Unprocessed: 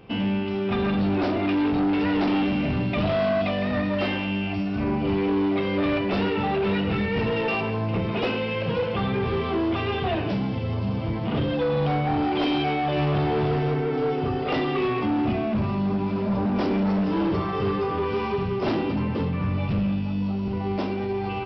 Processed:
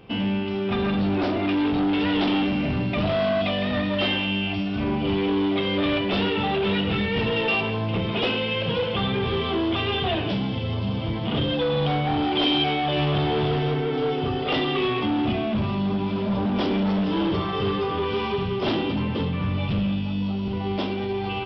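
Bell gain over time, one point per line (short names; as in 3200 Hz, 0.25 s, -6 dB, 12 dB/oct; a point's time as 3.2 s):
bell 3300 Hz 0.45 oct
1.41 s +4 dB
2.23 s +13 dB
2.51 s +2.5 dB
3.02 s +2.5 dB
3.62 s +11.5 dB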